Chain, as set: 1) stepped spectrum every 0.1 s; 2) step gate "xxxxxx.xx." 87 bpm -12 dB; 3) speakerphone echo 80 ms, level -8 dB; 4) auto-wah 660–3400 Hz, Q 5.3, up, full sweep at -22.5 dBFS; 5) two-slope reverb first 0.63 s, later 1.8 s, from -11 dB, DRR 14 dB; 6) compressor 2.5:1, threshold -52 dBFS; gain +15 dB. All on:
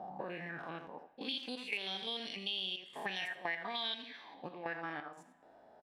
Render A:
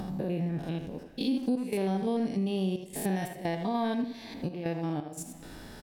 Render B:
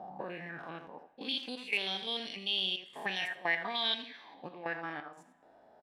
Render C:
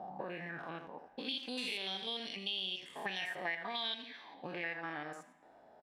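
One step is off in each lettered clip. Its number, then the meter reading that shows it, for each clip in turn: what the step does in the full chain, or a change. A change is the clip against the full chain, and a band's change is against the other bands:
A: 4, crest factor change -6.5 dB; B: 6, momentary loudness spread change +4 LU; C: 2, 8 kHz band +3.5 dB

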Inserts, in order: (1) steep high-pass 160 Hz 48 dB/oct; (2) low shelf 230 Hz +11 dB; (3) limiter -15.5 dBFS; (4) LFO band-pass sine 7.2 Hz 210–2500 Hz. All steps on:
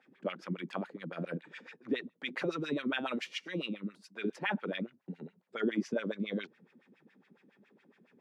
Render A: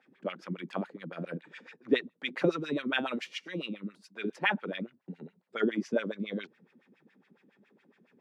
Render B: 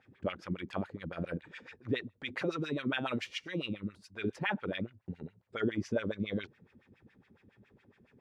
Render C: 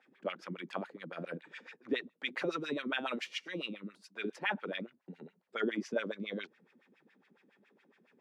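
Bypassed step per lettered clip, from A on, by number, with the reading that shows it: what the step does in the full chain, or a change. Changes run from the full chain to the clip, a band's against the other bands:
3, crest factor change +5.0 dB; 1, 125 Hz band +4.0 dB; 2, 125 Hz band -6.5 dB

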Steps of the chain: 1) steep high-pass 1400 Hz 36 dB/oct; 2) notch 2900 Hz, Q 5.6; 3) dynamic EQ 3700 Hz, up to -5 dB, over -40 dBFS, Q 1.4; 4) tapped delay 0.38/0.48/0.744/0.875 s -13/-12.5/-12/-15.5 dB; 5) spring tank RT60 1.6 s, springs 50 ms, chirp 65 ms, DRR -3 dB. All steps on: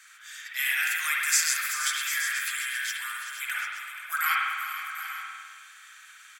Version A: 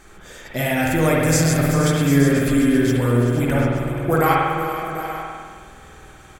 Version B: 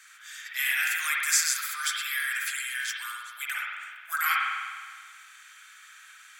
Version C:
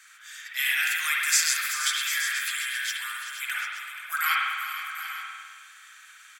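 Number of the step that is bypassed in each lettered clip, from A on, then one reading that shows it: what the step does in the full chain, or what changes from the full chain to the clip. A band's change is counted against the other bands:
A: 1, 1 kHz band +10.5 dB; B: 4, momentary loudness spread change +2 LU; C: 3, 4 kHz band +3.0 dB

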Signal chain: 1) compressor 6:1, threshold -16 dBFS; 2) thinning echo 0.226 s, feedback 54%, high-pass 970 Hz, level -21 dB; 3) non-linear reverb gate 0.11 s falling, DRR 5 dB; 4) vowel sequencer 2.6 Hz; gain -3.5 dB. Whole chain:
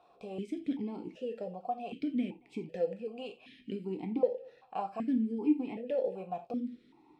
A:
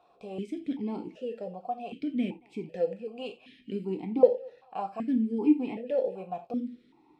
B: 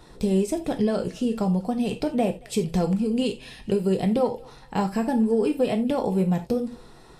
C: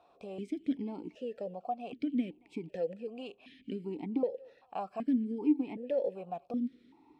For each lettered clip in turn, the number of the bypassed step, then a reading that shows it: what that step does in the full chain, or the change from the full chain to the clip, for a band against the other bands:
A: 1, mean gain reduction 2.0 dB; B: 4, 125 Hz band +9.5 dB; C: 3, 250 Hz band +2.0 dB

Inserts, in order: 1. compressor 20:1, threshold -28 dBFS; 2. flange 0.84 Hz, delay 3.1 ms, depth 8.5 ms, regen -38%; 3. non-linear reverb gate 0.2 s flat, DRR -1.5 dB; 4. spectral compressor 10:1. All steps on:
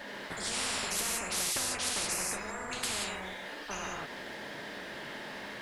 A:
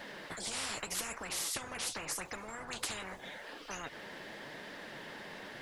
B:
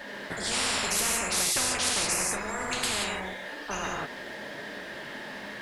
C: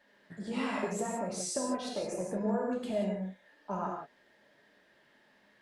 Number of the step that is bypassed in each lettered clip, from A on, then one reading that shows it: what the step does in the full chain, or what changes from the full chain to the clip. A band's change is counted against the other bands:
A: 3, crest factor change +2.5 dB; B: 1, mean gain reduction 3.0 dB; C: 4, 4 kHz band -15.5 dB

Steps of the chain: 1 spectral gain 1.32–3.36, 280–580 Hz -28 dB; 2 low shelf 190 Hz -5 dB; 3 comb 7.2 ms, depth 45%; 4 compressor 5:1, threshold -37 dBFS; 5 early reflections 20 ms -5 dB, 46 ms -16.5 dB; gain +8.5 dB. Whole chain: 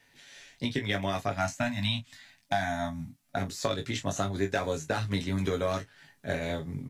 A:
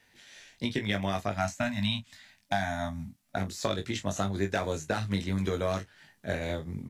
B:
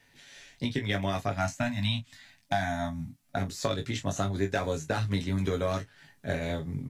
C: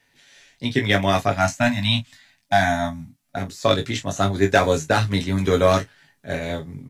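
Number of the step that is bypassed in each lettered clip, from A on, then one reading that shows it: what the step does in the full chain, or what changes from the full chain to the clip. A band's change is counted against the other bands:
3, momentary loudness spread change -3 LU; 2, 125 Hz band +3.0 dB; 4, mean gain reduction 7.5 dB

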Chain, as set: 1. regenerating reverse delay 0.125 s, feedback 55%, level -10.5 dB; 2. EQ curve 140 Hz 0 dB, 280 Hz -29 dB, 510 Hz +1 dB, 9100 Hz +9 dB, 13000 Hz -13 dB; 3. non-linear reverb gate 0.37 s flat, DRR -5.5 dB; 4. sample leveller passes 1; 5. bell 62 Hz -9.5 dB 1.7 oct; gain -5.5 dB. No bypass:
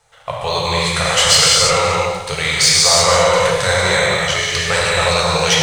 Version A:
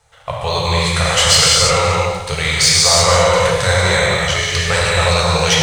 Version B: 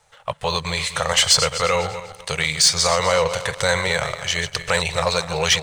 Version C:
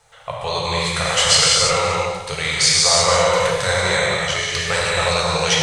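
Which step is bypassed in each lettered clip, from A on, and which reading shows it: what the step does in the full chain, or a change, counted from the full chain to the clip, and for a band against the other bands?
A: 5, 125 Hz band +5.5 dB; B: 3, crest factor change +3.0 dB; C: 4, crest factor change +3.5 dB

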